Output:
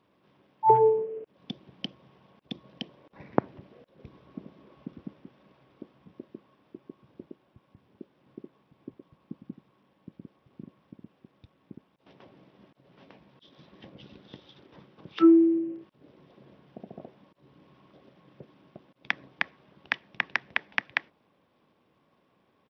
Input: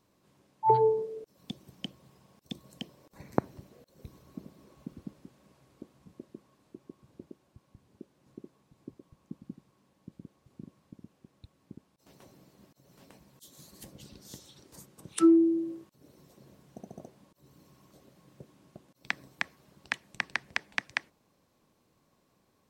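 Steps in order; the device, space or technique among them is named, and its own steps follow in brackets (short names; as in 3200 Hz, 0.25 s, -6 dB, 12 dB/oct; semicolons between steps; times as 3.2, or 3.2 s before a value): 15.58–16.92 dynamic EQ 1100 Hz, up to -5 dB, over -56 dBFS, Q 1.2; Bluetooth headset (HPF 170 Hz 6 dB/oct; downsampling 8000 Hz; gain +4 dB; SBC 64 kbps 44100 Hz)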